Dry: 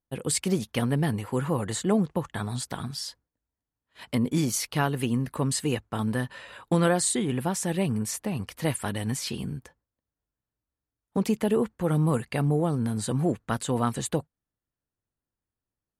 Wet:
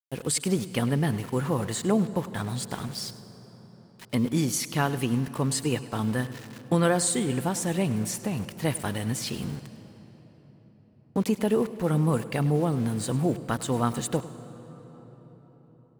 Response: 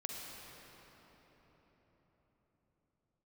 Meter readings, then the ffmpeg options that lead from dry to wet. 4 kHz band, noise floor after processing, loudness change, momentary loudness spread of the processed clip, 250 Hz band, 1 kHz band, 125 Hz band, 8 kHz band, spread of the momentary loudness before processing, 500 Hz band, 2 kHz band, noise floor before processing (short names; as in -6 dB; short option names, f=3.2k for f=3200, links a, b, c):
0.0 dB, -56 dBFS, 0.0 dB, 10 LU, 0.0 dB, 0.0 dB, 0.0 dB, 0.0 dB, 8 LU, +0.5 dB, 0.0 dB, under -85 dBFS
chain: -filter_complex "[0:a]aeval=exprs='val(0)*gte(abs(val(0)),0.0106)':c=same,asplit=2[a][b];[1:a]atrim=start_sample=2205,adelay=102[c];[b][c]afir=irnorm=-1:irlink=0,volume=-13.5dB[d];[a][d]amix=inputs=2:normalize=0"